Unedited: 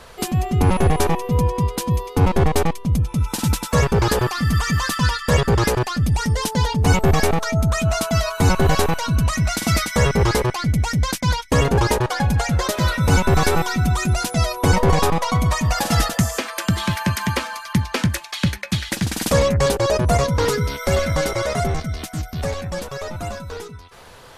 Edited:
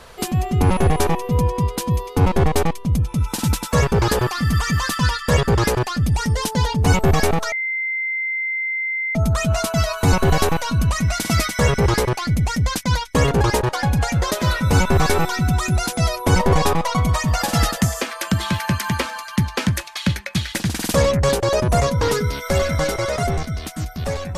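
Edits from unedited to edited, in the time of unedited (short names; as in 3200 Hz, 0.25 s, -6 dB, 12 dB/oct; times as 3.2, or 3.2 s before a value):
7.52 add tone 2080 Hz -20.5 dBFS 1.63 s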